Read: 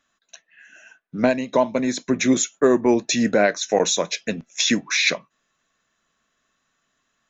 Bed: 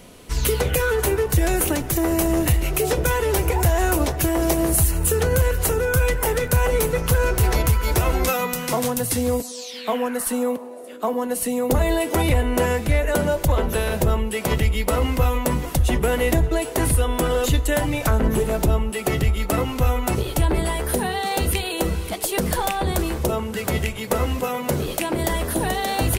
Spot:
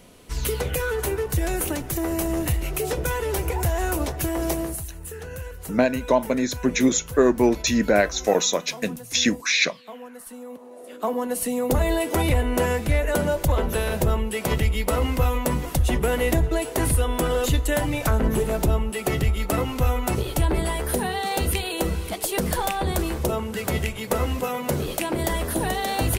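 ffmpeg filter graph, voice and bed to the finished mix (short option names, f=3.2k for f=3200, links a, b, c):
-filter_complex "[0:a]adelay=4550,volume=-1dB[a];[1:a]volume=9.5dB,afade=t=out:st=4.54:d=0.28:silence=0.266073,afade=t=in:st=10.49:d=0.43:silence=0.188365[b];[a][b]amix=inputs=2:normalize=0"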